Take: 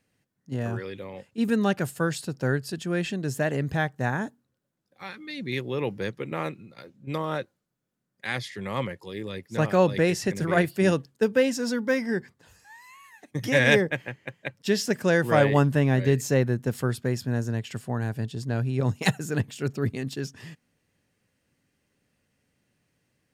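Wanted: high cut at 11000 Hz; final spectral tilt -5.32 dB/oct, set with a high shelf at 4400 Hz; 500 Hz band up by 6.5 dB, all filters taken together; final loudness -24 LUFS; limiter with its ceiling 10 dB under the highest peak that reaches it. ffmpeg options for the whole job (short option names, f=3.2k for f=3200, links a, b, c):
-af "lowpass=11k,equalizer=f=500:t=o:g=7.5,highshelf=f=4.4k:g=7.5,volume=2dB,alimiter=limit=-11.5dB:level=0:latency=1"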